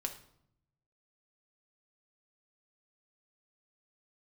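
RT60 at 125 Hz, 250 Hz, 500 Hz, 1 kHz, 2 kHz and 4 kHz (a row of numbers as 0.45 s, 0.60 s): 1.4 s, 1.0 s, 0.75 s, 0.70 s, 0.55 s, 0.50 s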